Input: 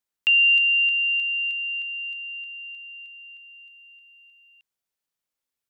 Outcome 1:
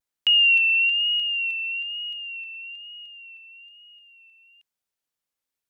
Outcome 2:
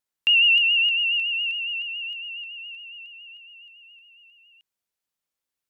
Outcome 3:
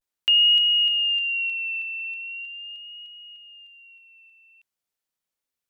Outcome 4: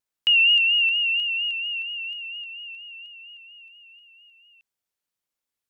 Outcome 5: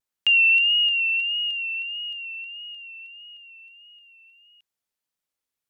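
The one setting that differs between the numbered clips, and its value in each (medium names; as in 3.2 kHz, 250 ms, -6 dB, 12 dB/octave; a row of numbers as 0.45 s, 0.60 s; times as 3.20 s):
vibrato, rate: 1.1 Hz, 7.2 Hz, 0.4 Hz, 4.3 Hz, 1.6 Hz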